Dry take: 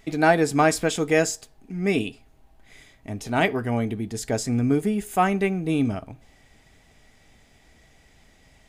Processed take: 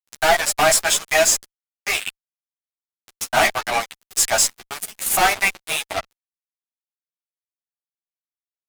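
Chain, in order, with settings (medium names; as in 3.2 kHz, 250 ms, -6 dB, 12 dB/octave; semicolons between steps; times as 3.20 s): steep high-pass 610 Hz 96 dB/octave; treble shelf 7 kHz +10 dB; gain riding within 3 dB 2 s; on a send: frequency-shifting echo 167 ms, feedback 63%, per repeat -90 Hz, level -24 dB; on the sum: Chebyshev shaper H 3 -42 dB, 7 -20 dB, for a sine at -6.5 dBFS; fuzz box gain 40 dB, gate -43 dBFS; three-phase chorus; trim +4.5 dB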